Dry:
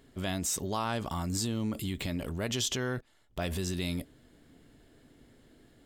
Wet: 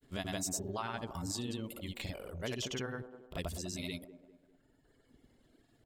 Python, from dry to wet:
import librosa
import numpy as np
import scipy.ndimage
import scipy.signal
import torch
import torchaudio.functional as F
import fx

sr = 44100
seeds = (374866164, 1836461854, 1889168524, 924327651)

y = fx.dereverb_blind(x, sr, rt60_s=1.8)
y = fx.granulator(y, sr, seeds[0], grain_ms=100.0, per_s=20.0, spray_ms=100.0, spread_st=0)
y = fx.echo_wet_bandpass(y, sr, ms=199, feedback_pct=41, hz=500.0, wet_db=-9)
y = F.gain(torch.from_numpy(y), -3.0).numpy()